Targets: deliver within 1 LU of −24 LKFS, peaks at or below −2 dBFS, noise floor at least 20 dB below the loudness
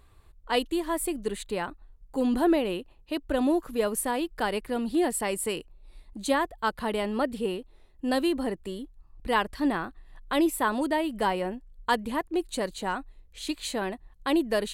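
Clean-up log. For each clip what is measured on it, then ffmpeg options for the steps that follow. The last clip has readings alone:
integrated loudness −29.0 LKFS; sample peak −11.5 dBFS; target loudness −24.0 LKFS
→ -af "volume=5dB"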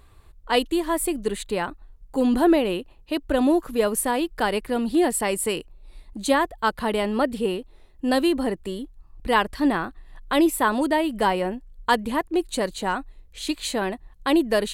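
integrated loudness −24.0 LKFS; sample peak −6.5 dBFS; background noise floor −52 dBFS

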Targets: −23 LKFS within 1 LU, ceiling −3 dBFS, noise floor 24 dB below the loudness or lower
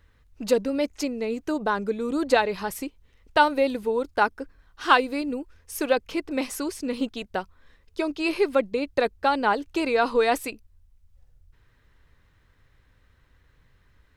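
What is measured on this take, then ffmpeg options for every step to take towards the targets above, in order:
integrated loudness −25.5 LKFS; sample peak −4.0 dBFS; target loudness −23.0 LKFS
→ -af "volume=2.5dB,alimiter=limit=-3dB:level=0:latency=1"

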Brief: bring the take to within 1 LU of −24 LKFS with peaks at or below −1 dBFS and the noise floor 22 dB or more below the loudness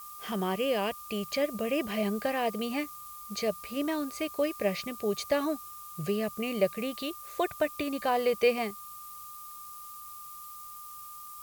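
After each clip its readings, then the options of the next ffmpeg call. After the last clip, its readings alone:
interfering tone 1,200 Hz; level of the tone −45 dBFS; background noise floor −45 dBFS; target noise floor −53 dBFS; integrated loudness −31.0 LKFS; sample peak −14.0 dBFS; target loudness −24.0 LKFS
→ -af "bandreject=frequency=1200:width=30"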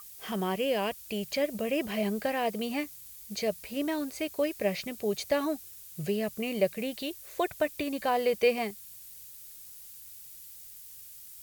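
interfering tone none found; background noise floor −48 dBFS; target noise floor −54 dBFS
→ -af "afftdn=noise_reduction=6:noise_floor=-48"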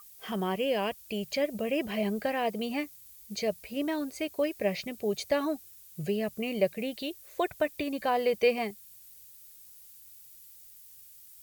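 background noise floor −53 dBFS; target noise floor −54 dBFS
→ -af "afftdn=noise_reduction=6:noise_floor=-53"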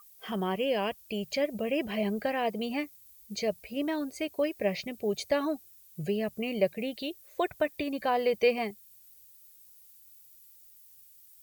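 background noise floor −56 dBFS; integrated loudness −31.5 LKFS; sample peak −14.0 dBFS; target loudness −24.0 LKFS
→ -af "volume=7.5dB"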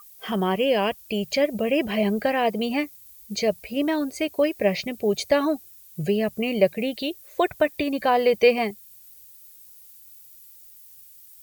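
integrated loudness −24.0 LKFS; sample peak −6.5 dBFS; background noise floor −49 dBFS

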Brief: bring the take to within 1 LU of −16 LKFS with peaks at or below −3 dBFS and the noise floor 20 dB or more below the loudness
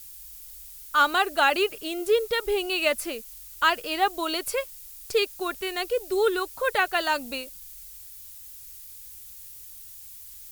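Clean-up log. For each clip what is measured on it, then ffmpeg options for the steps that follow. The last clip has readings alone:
background noise floor −45 dBFS; target noise floor −46 dBFS; integrated loudness −25.5 LKFS; sample peak −8.0 dBFS; target loudness −16.0 LKFS
→ -af "afftdn=noise_reduction=6:noise_floor=-45"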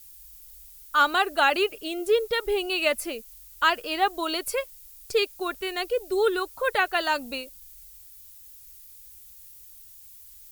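background noise floor −49 dBFS; integrated loudness −25.5 LKFS; sample peak −8.0 dBFS; target loudness −16.0 LKFS
→ -af "volume=9.5dB,alimiter=limit=-3dB:level=0:latency=1"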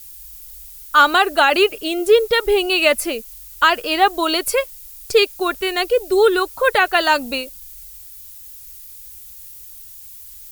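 integrated loudness −16.5 LKFS; sample peak −3.0 dBFS; background noise floor −39 dBFS

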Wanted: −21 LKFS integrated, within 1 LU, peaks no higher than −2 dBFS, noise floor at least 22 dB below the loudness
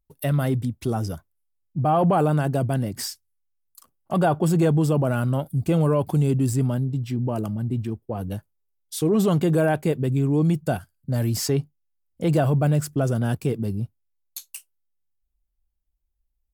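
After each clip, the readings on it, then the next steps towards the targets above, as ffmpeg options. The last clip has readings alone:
integrated loudness −23.5 LKFS; sample peak −10.0 dBFS; target loudness −21.0 LKFS
→ -af "volume=2.5dB"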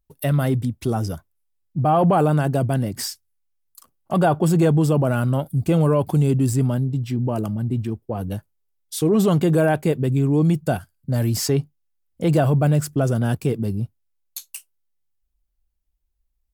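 integrated loudness −21.0 LKFS; sample peak −7.5 dBFS; background noise floor −71 dBFS

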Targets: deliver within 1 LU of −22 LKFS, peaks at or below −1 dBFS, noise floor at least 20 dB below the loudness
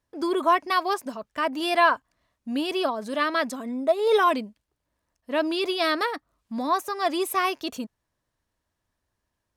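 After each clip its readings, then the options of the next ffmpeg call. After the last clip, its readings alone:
integrated loudness −25.0 LKFS; sample peak −8.0 dBFS; target loudness −22.0 LKFS
→ -af "volume=3dB"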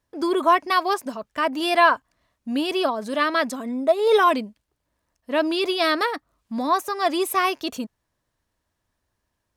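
integrated loudness −22.0 LKFS; sample peak −5.0 dBFS; background noise floor −78 dBFS

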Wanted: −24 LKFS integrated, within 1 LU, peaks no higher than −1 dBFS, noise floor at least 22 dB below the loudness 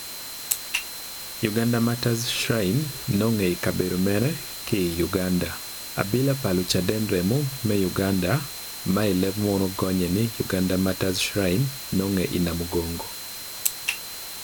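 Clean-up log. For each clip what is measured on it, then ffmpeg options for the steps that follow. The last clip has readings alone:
interfering tone 4,100 Hz; level of the tone −40 dBFS; background noise floor −36 dBFS; target noise floor −47 dBFS; integrated loudness −25.0 LKFS; sample peak −4.0 dBFS; target loudness −24.0 LKFS
→ -af "bandreject=frequency=4100:width=30"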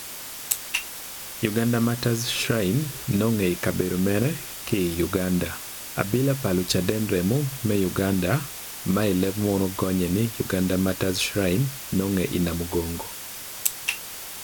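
interfering tone none found; background noise floor −37 dBFS; target noise floor −47 dBFS
→ -af "afftdn=noise_reduction=10:noise_floor=-37"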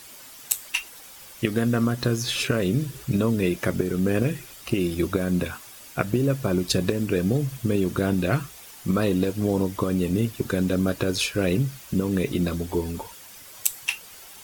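background noise floor −45 dBFS; target noise floor −47 dBFS
→ -af "afftdn=noise_reduction=6:noise_floor=-45"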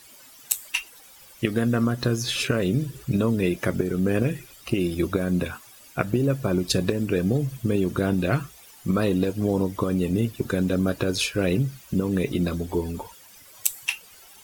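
background noise floor −50 dBFS; integrated loudness −25.0 LKFS; sample peak −3.5 dBFS; target loudness −24.0 LKFS
→ -af "volume=1dB"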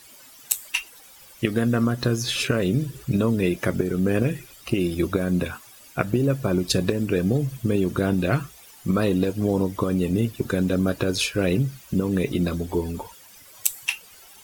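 integrated loudness −24.0 LKFS; sample peak −2.5 dBFS; background noise floor −49 dBFS

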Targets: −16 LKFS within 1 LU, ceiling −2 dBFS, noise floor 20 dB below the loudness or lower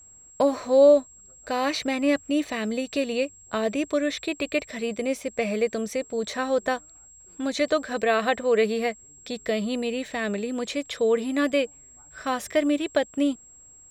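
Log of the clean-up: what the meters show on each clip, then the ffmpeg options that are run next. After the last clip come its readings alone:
interfering tone 7,600 Hz; level of the tone −48 dBFS; integrated loudness −25.5 LKFS; sample peak −8.0 dBFS; target loudness −16.0 LKFS
→ -af "bandreject=frequency=7600:width=30"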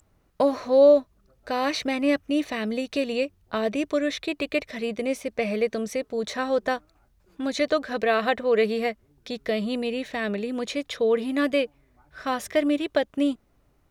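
interfering tone none found; integrated loudness −25.5 LKFS; sample peak −8.0 dBFS; target loudness −16.0 LKFS
→ -af "volume=9.5dB,alimiter=limit=-2dB:level=0:latency=1"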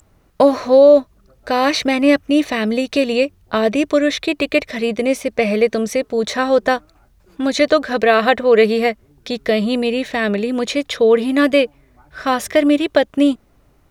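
integrated loudness −16.5 LKFS; sample peak −2.0 dBFS; background noise floor −55 dBFS

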